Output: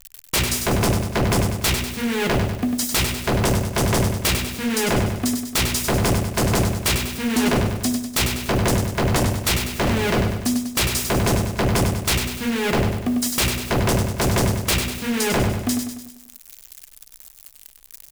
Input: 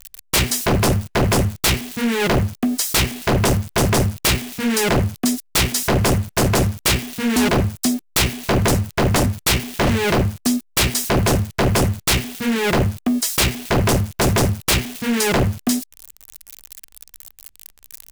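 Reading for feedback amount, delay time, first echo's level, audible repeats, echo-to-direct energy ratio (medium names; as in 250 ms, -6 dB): 51%, 98 ms, -6.5 dB, 5, -5.0 dB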